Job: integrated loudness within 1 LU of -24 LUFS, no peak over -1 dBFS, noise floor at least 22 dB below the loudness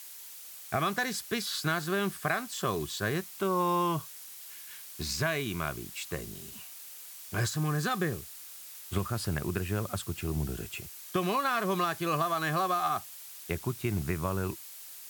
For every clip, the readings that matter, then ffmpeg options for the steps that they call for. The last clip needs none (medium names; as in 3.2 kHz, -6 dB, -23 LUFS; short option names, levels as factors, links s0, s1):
noise floor -47 dBFS; noise floor target -54 dBFS; loudness -32.0 LUFS; peak level -15.5 dBFS; loudness target -24.0 LUFS
-> -af "afftdn=nr=7:nf=-47"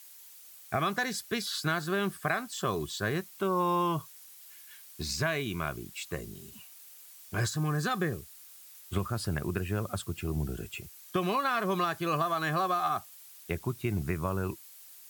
noise floor -52 dBFS; noise floor target -54 dBFS
-> -af "afftdn=nr=6:nf=-52"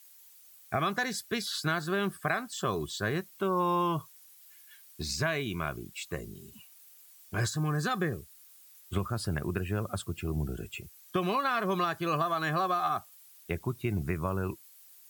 noise floor -56 dBFS; loudness -32.0 LUFS; peak level -16.0 dBFS; loudness target -24.0 LUFS
-> -af "volume=2.51"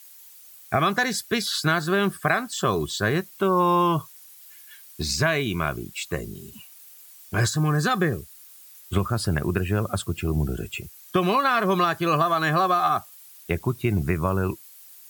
loudness -24.0 LUFS; peak level -8.0 dBFS; noise floor -48 dBFS